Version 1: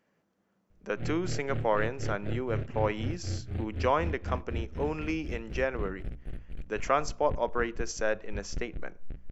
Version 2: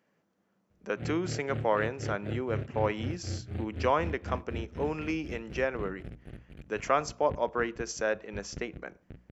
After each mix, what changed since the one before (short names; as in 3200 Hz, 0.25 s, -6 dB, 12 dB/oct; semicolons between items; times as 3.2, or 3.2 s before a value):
master: add HPF 79 Hz 12 dB/oct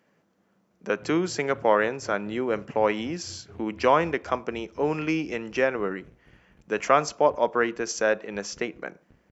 speech +6.5 dB; background -11.5 dB